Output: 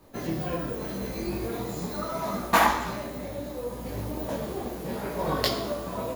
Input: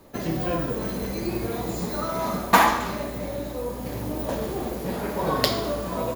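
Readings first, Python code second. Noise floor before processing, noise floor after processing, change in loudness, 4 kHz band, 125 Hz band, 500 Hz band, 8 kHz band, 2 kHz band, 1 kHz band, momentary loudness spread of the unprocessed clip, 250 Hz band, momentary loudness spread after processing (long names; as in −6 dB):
−33 dBFS, −37 dBFS, −3.5 dB, −3.0 dB, −3.5 dB, −3.5 dB, −3.5 dB, −3.0 dB, −3.5 dB, 11 LU, −4.0 dB, 11 LU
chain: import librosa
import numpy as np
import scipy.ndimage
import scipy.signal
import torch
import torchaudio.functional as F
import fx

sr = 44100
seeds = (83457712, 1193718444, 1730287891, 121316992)

y = fx.detune_double(x, sr, cents=26)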